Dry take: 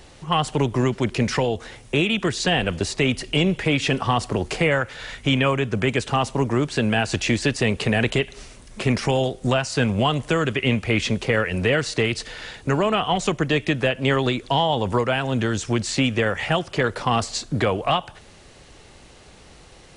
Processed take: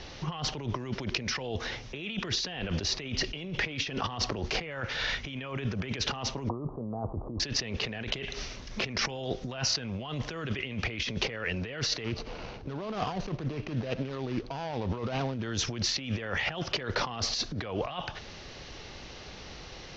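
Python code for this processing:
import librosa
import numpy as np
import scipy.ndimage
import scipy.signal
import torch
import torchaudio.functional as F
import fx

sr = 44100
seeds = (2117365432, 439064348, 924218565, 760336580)

y = fx.steep_lowpass(x, sr, hz=1200.0, slope=96, at=(6.49, 7.4))
y = fx.median_filter(y, sr, points=25, at=(12.04, 15.43))
y = scipy.signal.sosfilt(scipy.signal.butter(12, 6100.0, 'lowpass', fs=sr, output='sos'), y)
y = fx.high_shelf(y, sr, hz=2300.0, db=5.0)
y = fx.over_compress(y, sr, threshold_db=-29.0, ratio=-1.0)
y = y * 10.0 ** (-5.0 / 20.0)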